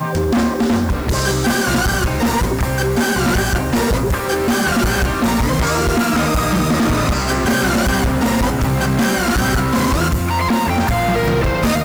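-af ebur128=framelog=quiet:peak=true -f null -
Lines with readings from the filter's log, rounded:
Integrated loudness:
  I:         -16.6 LUFS
  Threshold: -26.6 LUFS
Loudness range:
  LRA:         0.8 LU
  Threshold: -36.6 LUFS
  LRA low:   -17.0 LUFS
  LRA high:  -16.2 LUFS
True peak:
  Peak:      -11.1 dBFS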